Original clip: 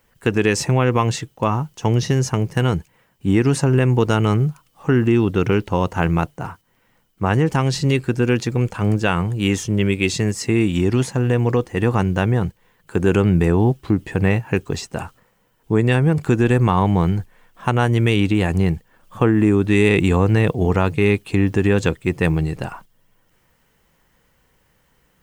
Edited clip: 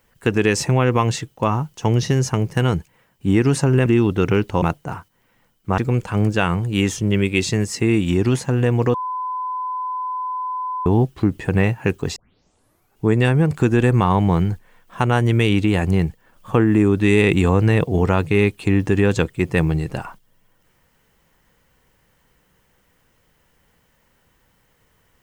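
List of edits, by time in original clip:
3.86–5.04 cut
5.8–6.15 cut
7.31–8.45 cut
11.61–13.53 bleep 1010 Hz -22.5 dBFS
14.83 tape start 0.89 s

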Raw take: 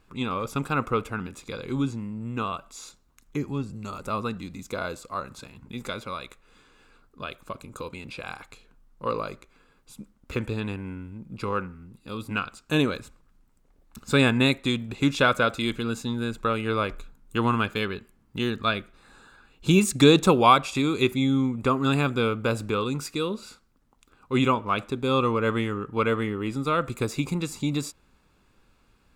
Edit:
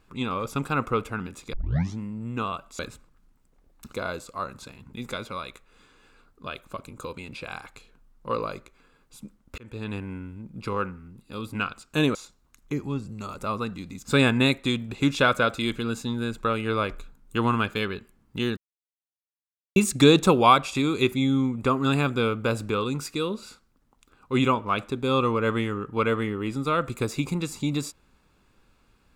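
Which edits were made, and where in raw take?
1.53 tape start 0.45 s
2.79–4.69 swap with 12.91–14.05
10.34–10.73 fade in
18.57–19.76 mute

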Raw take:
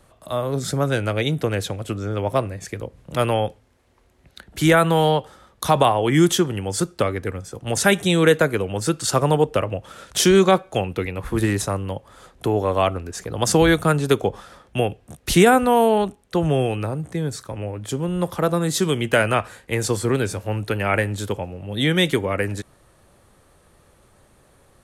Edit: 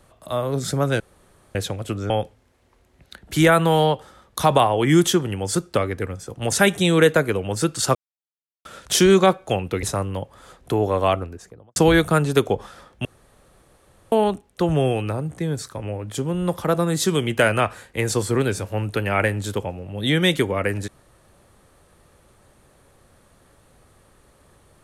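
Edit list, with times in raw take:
1–1.55 room tone
2.1–3.35 cut
9.2–9.9 mute
11.08–11.57 cut
12.79–13.5 studio fade out
14.79–15.86 room tone

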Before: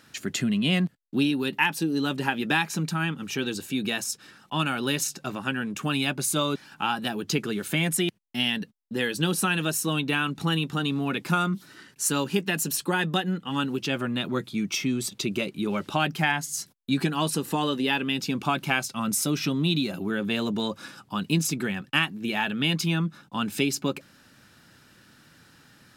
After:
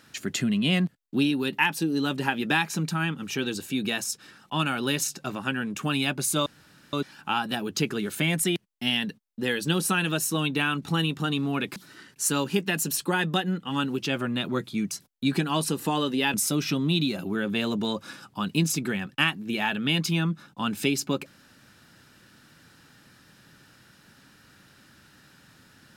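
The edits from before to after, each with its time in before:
6.46 insert room tone 0.47 s
11.29–11.56 cut
14.71–16.57 cut
18–19.09 cut

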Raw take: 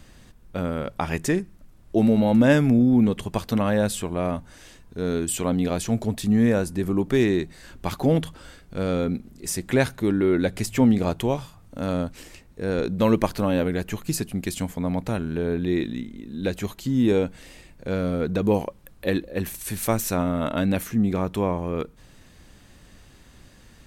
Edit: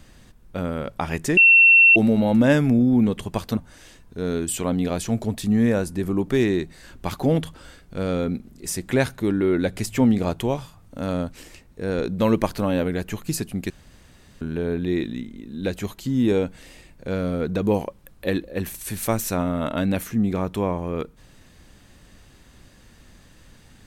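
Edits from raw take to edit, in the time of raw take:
1.37–1.96 bleep 2710 Hz -9 dBFS
3.57–4.37 cut
14.5–15.21 room tone

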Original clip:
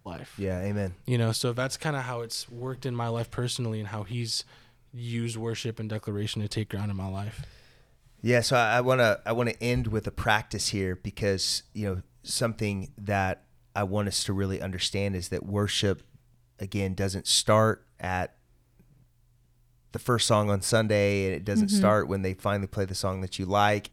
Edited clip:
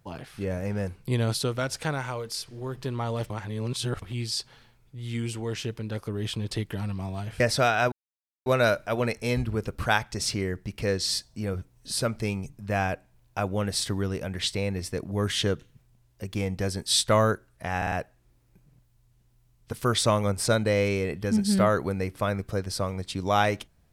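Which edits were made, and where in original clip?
3.3–4.02 reverse
7.4–8.33 cut
8.85 insert silence 0.54 s
18.16 stutter 0.05 s, 4 plays

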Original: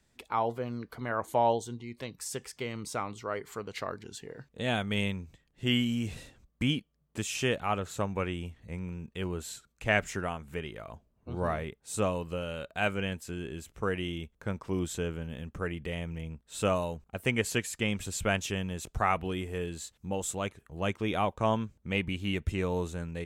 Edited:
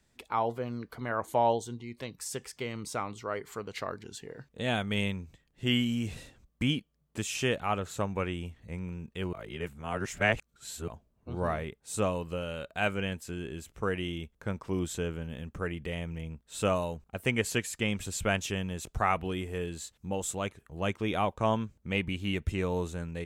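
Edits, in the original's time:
9.33–10.88 reverse

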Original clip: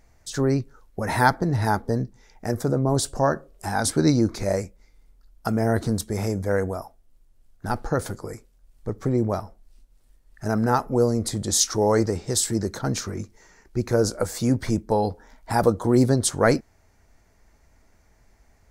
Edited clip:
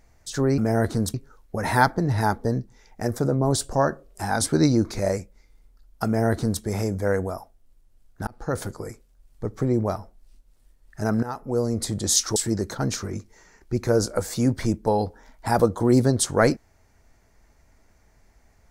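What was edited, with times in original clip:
5.5–6.06 copy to 0.58
7.71–8.04 fade in
10.67–11.29 fade in, from -15 dB
11.8–12.4 cut

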